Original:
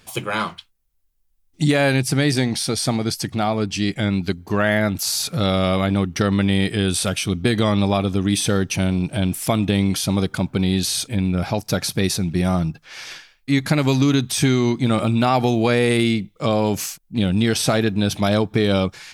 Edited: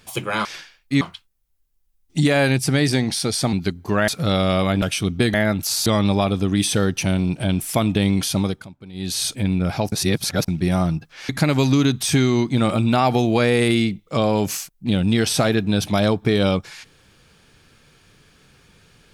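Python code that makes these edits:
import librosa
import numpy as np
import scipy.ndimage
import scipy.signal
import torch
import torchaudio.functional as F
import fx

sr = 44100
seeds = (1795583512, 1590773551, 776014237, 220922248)

y = fx.edit(x, sr, fx.cut(start_s=2.97, length_s=1.18),
    fx.move(start_s=4.7, length_s=0.52, to_s=7.59),
    fx.cut(start_s=5.96, length_s=1.11),
    fx.fade_down_up(start_s=10.12, length_s=0.83, db=-19.5, fade_s=0.29),
    fx.reverse_span(start_s=11.65, length_s=0.56),
    fx.move(start_s=13.02, length_s=0.56, to_s=0.45), tone=tone)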